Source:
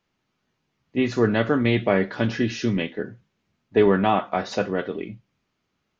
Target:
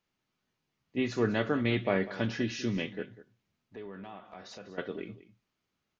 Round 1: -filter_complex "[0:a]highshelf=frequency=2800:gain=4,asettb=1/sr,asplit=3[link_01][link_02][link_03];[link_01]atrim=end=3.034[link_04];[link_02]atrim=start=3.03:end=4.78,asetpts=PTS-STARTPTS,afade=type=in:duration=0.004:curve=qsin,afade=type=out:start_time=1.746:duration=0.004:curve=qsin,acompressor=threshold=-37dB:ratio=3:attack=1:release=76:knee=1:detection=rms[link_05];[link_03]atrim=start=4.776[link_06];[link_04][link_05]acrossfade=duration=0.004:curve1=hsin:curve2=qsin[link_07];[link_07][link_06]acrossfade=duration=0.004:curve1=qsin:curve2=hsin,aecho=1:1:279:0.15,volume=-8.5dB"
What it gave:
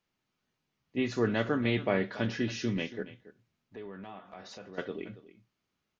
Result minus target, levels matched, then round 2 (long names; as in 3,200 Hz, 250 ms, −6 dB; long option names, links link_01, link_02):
echo 83 ms late
-filter_complex "[0:a]highshelf=frequency=2800:gain=4,asettb=1/sr,asplit=3[link_01][link_02][link_03];[link_01]atrim=end=3.034[link_04];[link_02]atrim=start=3.03:end=4.78,asetpts=PTS-STARTPTS,afade=type=in:duration=0.004:curve=qsin,afade=type=out:start_time=1.746:duration=0.004:curve=qsin,acompressor=threshold=-37dB:ratio=3:attack=1:release=76:knee=1:detection=rms[link_05];[link_03]atrim=start=4.776[link_06];[link_04][link_05]acrossfade=duration=0.004:curve1=hsin:curve2=qsin[link_07];[link_07][link_06]acrossfade=duration=0.004:curve1=qsin:curve2=hsin,aecho=1:1:196:0.15,volume=-8.5dB"